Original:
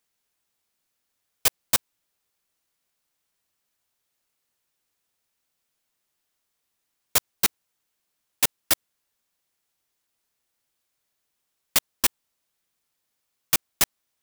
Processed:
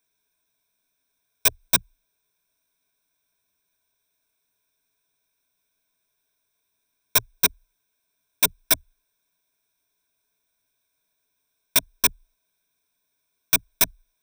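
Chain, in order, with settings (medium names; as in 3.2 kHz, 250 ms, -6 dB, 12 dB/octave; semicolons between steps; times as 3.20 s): rippled EQ curve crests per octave 1.6, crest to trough 15 dB; trim -1 dB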